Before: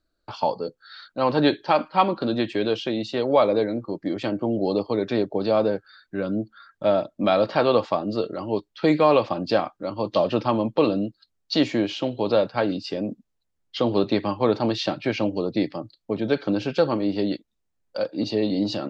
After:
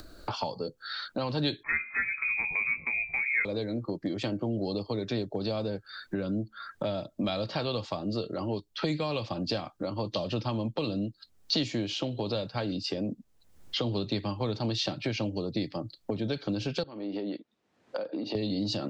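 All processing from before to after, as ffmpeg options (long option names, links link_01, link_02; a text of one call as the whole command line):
ffmpeg -i in.wav -filter_complex "[0:a]asettb=1/sr,asplit=3[link_01][link_02][link_03];[link_01]atrim=end=1.634[link_04];[link_02]atrim=start=1.63:end=3.45,asetpts=PTS-STARTPTS,afade=type=in:duration=0.004:curve=qsin,afade=type=out:start_time=1.816:duration=0.004:curve=qsin,bandreject=frequency=47.99:width_type=h:width=4,bandreject=frequency=95.98:width_type=h:width=4,bandreject=frequency=143.97:width_type=h:width=4,bandreject=frequency=191.96:width_type=h:width=4,bandreject=frequency=239.95:width_type=h:width=4,bandreject=frequency=287.94:width_type=h:width=4,bandreject=frequency=335.93:width_type=h:width=4,bandreject=frequency=383.92:width_type=h:width=4,bandreject=frequency=431.91:width_type=h:width=4,bandreject=frequency=479.9:width_type=h:width=4,bandreject=frequency=527.89:width_type=h:width=4,bandreject=frequency=575.88:width_type=h:width=4,bandreject=frequency=623.87:width_type=h:width=4,bandreject=frequency=671.86:width_type=h:width=4,bandreject=frequency=719.85:width_type=h:width=4,lowpass=frequency=2300:width_type=q:width=0.5098,lowpass=frequency=2300:width_type=q:width=0.6013,lowpass=frequency=2300:width_type=q:width=0.9,lowpass=frequency=2300:width_type=q:width=2.563,afreqshift=-2700,asplit=2[link_05][link_06];[link_06]adelay=13,volume=-6.5dB[link_07];[link_05][link_07]amix=inputs=2:normalize=0,atrim=end_sample=80262[link_08];[link_03]atrim=start=3.446[link_09];[link_04][link_08]acrossfade=duration=0.004:curve1=hsin:curve2=qsin[link_10];[link_10][link_09]acrossfade=duration=0.004:curve1=qsin:curve2=hsin,asettb=1/sr,asplit=3[link_11][link_12][link_13];[link_11]atrim=end=16.834[link_14];[link_12]atrim=start=16.83:end=18.35,asetpts=PTS-STARTPTS,afade=type=in:duration=0.004:curve=qsin,afade=type=out:start_time=1.516:duration=0.004:curve=qsin,acompressor=threshold=-32dB:ratio=12:attack=3.2:release=140:knee=1:detection=peak,highpass=220,lowpass=3600[link_15];[link_13]atrim=start=18.346[link_16];[link_14][link_15]acrossfade=duration=0.004:curve1=hsin:curve2=qsin[link_17];[link_17][link_16]acrossfade=duration=0.004:curve1=qsin:curve2=hsin,acrossover=split=140|3000[link_18][link_19][link_20];[link_19]acompressor=threshold=-33dB:ratio=6[link_21];[link_18][link_21][link_20]amix=inputs=3:normalize=0,equalizer=frequency=2400:width=0.36:gain=-3,acompressor=mode=upward:threshold=-30dB:ratio=2.5,volume=2dB" out.wav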